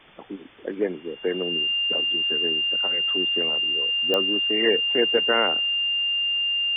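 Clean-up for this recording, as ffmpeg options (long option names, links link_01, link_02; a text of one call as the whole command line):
ffmpeg -i in.wav -af "adeclick=threshold=4,bandreject=frequency=2800:width=30,afwtdn=0.005" out.wav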